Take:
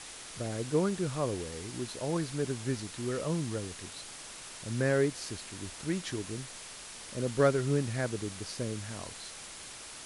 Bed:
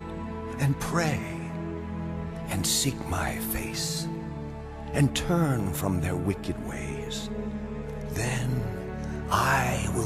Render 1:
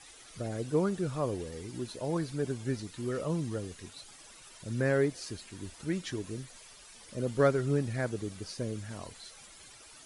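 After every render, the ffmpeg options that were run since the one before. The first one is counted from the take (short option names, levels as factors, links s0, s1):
-af "afftdn=nr=12:nf=-46"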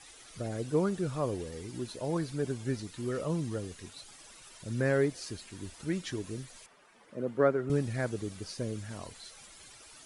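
-filter_complex "[0:a]asettb=1/sr,asplit=3[s0][s1][s2];[s0]atrim=end=6.664[s3];[s1]atrim=start=6.66:end=7.7,asetpts=PTS-STARTPTS,afade=t=in:d=0.004:c=qsin,afade=t=out:st=1.036:d=0.004:c=qsin,acrossover=split=150 2200:gain=0.0794 1 0.126[s4][s5][s6];[s4][s5][s6]amix=inputs=3:normalize=0[s7];[s2]atrim=start=7.696[s8];[s3][s7]acrossfade=d=0.004:c1=hsin:c2=qsin[s9];[s9][s8]acrossfade=d=0.004:c1=qsin:c2=hsin"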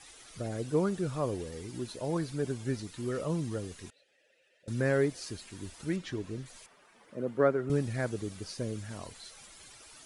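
-filter_complex "[0:a]asettb=1/sr,asplit=3[s0][s1][s2];[s0]atrim=end=3.904[s3];[s1]atrim=start=3.9:end=4.68,asetpts=PTS-STARTPTS,afade=t=in:d=0.004:c=qsin,afade=t=out:st=0.776:d=0.004:c=qsin,asplit=3[s4][s5][s6];[s4]bandpass=f=530:t=q:w=8,volume=1[s7];[s5]bandpass=f=1840:t=q:w=8,volume=0.501[s8];[s6]bandpass=f=2480:t=q:w=8,volume=0.355[s9];[s7][s8][s9]amix=inputs=3:normalize=0[s10];[s2]atrim=start=4.676[s11];[s3][s10]acrossfade=d=0.004:c1=hsin:c2=qsin[s12];[s12][s11]acrossfade=d=0.004:c1=qsin:c2=hsin,asettb=1/sr,asplit=3[s13][s14][s15];[s13]atrim=end=5.964[s16];[s14]atrim=start=5.96:end=6.46,asetpts=PTS-STARTPTS,afade=t=in:d=0.004:c=qsin,afade=t=out:st=0.496:d=0.004:c=qsin,aemphasis=mode=reproduction:type=50fm[s17];[s15]atrim=start=6.456[s18];[s16][s17]acrossfade=d=0.004:c1=hsin:c2=qsin[s19];[s19][s18]acrossfade=d=0.004:c1=qsin:c2=hsin"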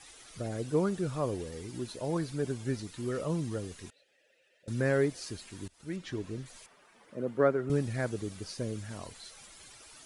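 -filter_complex "[0:a]asplit=2[s0][s1];[s0]atrim=end=5.68,asetpts=PTS-STARTPTS,afade=t=out:st=5.676:d=0.004:c=hsin:silence=0.0891251[s2];[s1]atrim=start=5.68,asetpts=PTS-STARTPTS,afade=t=in:d=0.48:silence=0.0891251[s3];[s2][s3]concat=n=2:v=0:a=1"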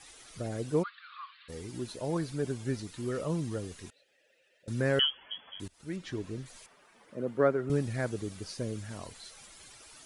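-filter_complex "[0:a]asplit=3[s0][s1][s2];[s0]afade=t=out:st=0.82:d=0.02[s3];[s1]asuperpass=centerf=2200:order=20:qfactor=0.67,afade=t=in:st=0.82:d=0.02,afade=t=out:st=1.48:d=0.02[s4];[s2]afade=t=in:st=1.48:d=0.02[s5];[s3][s4][s5]amix=inputs=3:normalize=0,asettb=1/sr,asplit=3[s6][s7][s8];[s6]atrim=end=4.994[s9];[s7]atrim=start=4.99:end=5.6,asetpts=PTS-STARTPTS,afade=t=in:d=0.004:c=qsin,afade=t=out:st=0.606:d=0.004:c=qsin,lowpass=f=2900:t=q:w=0.5098,lowpass=f=2900:t=q:w=0.6013,lowpass=f=2900:t=q:w=0.9,lowpass=f=2900:t=q:w=2.563,afreqshift=-3400[s10];[s8]atrim=start=5.596[s11];[s9][s10]acrossfade=d=0.004:c1=hsin:c2=qsin[s12];[s12][s11]acrossfade=d=0.004:c1=qsin:c2=hsin"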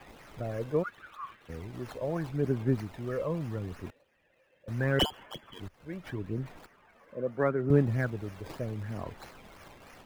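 -filter_complex "[0:a]aphaser=in_gain=1:out_gain=1:delay=1.9:decay=0.51:speed=0.77:type=sinusoidal,acrossover=split=100|2900[s0][s1][s2];[s2]acrusher=samples=21:mix=1:aa=0.000001:lfo=1:lforange=21:lforate=3.1[s3];[s0][s1][s3]amix=inputs=3:normalize=0"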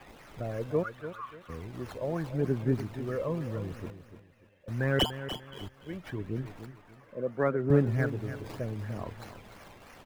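-af "aecho=1:1:294|588|882:0.266|0.0798|0.0239"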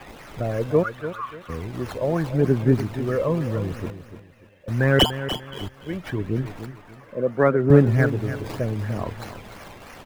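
-af "volume=2.99"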